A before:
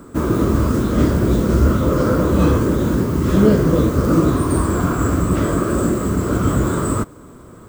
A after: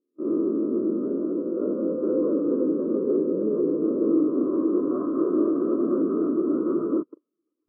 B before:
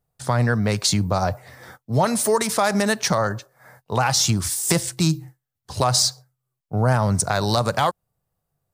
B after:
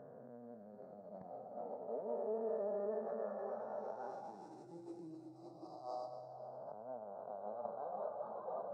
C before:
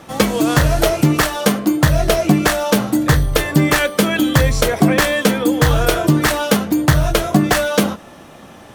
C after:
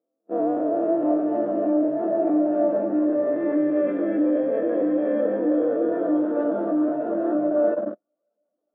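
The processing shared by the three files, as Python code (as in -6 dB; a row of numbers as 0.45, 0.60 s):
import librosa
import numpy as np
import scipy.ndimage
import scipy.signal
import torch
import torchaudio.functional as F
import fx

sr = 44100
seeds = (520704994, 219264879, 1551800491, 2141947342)

p1 = fx.spec_blur(x, sr, span_ms=1040.0)
p2 = fx.high_shelf(p1, sr, hz=2700.0, db=-11.5)
p3 = p2 + fx.echo_diffused(p2, sr, ms=571, feedback_pct=41, wet_db=-7.0, dry=0)
p4 = fx.rev_plate(p3, sr, seeds[0], rt60_s=2.5, hf_ratio=0.95, predelay_ms=105, drr_db=15.5)
p5 = fx.level_steps(p4, sr, step_db=23)
p6 = scipy.signal.sosfilt(scipy.signal.butter(2, 350.0, 'highpass', fs=sr, output='sos'), p5)
p7 = fx.spectral_expand(p6, sr, expansion=2.5)
y = p7 * 10.0 ** (4.5 / 20.0)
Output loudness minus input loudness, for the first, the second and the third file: -7.0, -24.5, -7.5 LU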